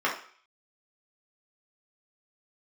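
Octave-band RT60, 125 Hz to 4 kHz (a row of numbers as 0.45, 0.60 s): 0.30, 0.40, 0.45, 0.55, 0.55, 0.55 s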